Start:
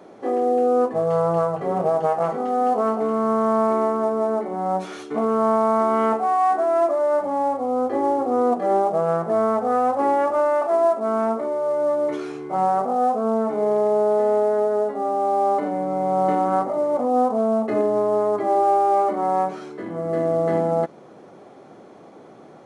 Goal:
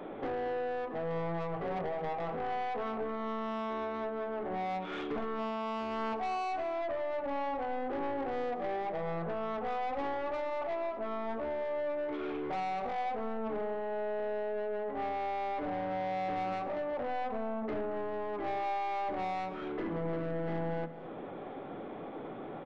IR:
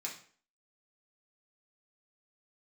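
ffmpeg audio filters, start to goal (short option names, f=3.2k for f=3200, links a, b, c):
-filter_complex "[0:a]acompressor=threshold=-32dB:ratio=6,asplit=2[a][b];[1:a]atrim=start_sample=2205[c];[b][c]afir=irnorm=-1:irlink=0,volume=-6.5dB[d];[a][d]amix=inputs=2:normalize=0,aresample=8000,aresample=44100,aeval=exprs='(tanh(44.7*val(0)+0.1)-tanh(0.1))/44.7':c=same,lowshelf=f=100:g=7.5,bandreject=f=50:t=h:w=6,bandreject=f=100:t=h:w=6,bandreject=f=150:t=h:w=6,bandreject=f=200:t=h:w=6,bandreject=f=250:t=h:w=6,aecho=1:1:225:0.188,volume=1dB"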